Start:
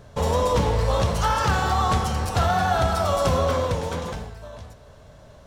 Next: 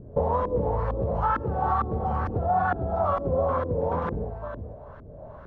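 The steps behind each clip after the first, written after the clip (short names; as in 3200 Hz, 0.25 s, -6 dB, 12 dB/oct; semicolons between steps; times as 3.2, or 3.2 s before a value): compressor 6:1, threshold -27 dBFS, peak gain reduction 10.5 dB; LFO low-pass saw up 2.2 Hz 290–1600 Hz; gain +2.5 dB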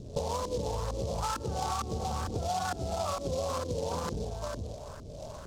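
compressor 3:1, threshold -32 dBFS, peak gain reduction 10 dB; noise-modulated delay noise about 4900 Hz, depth 0.056 ms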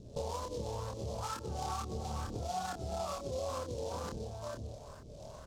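doubler 27 ms -4 dB; gain -7.5 dB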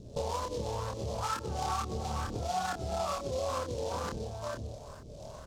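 dynamic EQ 1800 Hz, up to +5 dB, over -53 dBFS, Q 0.72; gain +3 dB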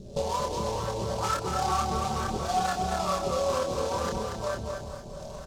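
comb 5.2 ms, depth 48%; feedback echo 0.234 s, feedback 31%, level -5 dB; gain +4 dB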